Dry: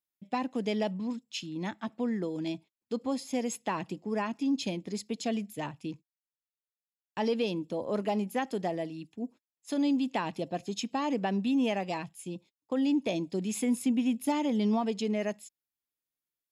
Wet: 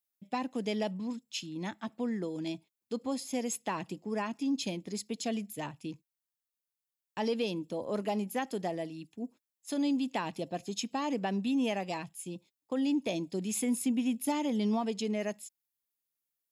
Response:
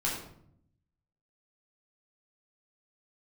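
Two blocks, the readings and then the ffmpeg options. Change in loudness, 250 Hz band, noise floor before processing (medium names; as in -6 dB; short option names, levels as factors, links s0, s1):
-2.5 dB, -2.5 dB, under -85 dBFS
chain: -af "crystalizer=i=1:c=0,volume=0.75"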